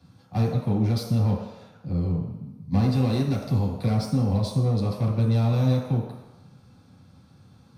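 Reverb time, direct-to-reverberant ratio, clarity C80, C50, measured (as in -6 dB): 1.0 s, -3.5 dB, 5.5 dB, 3.5 dB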